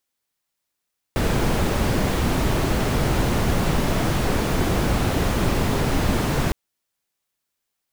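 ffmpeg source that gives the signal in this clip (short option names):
-f lavfi -i "anoisesrc=c=brown:a=0.468:d=5.36:r=44100:seed=1"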